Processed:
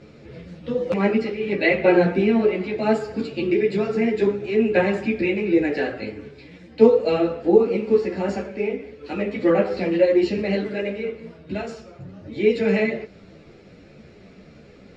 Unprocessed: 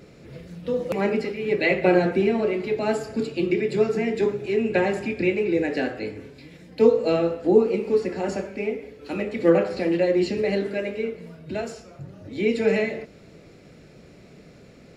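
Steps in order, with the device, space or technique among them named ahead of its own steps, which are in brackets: string-machine ensemble chorus (three-phase chorus; low-pass 5 kHz 12 dB/octave); trim +5 dB

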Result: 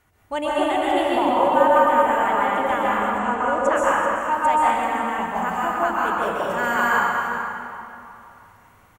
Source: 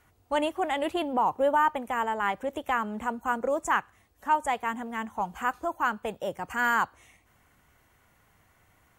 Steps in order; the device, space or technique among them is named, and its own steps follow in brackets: cave (delay 387 ms -12 dB; reverberation RT60 2.8 s, pre-delay 119 ms, DRR -7 dB); 3.18–3.75 s: low-pass 7.7 kHz 12 dB/octave

